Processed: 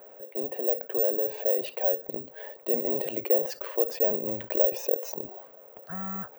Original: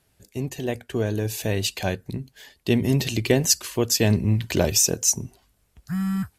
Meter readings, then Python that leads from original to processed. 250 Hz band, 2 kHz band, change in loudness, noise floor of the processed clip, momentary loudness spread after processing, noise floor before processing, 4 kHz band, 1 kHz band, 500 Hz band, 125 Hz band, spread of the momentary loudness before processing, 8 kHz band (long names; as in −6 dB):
−14.0 dB, −12.5 dB, −3.5 dB, −51 dBFS, 13 LU, −67 dBFS, −19.5 dB, −4.0 dB, −1.0 dB, −24.5 dB, 14 LU, −25.0 dB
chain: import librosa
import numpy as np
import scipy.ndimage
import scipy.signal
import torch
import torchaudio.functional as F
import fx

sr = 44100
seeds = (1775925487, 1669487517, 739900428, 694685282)

y = fx.ladder_bandpass(x, sr, hz=580.0, resonance_pct=70)
y = (np.kron(y[::2], np.eye(2)[0]) * 2)[:len(y)]
y = fx.env_flatten(y, sr, amount_pct=50)